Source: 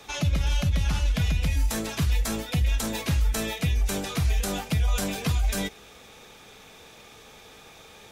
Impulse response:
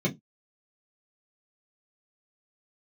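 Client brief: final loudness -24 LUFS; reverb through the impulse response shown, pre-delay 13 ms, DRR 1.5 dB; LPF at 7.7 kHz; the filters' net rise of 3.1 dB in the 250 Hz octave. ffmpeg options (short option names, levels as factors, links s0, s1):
-filter_complex "[0:a]lowpass=7700,equalizer=f=250:t=o:g=4.5,asplit=2[s0][s1];[1:a]atrim=start_sample=2205,adelay=13[s2];[s1][s2]afir=irnorm=-1:irlink=0,volume=0.299[s3];[s0][s3]amix=inputs=2:normalize=0,volume=0.562"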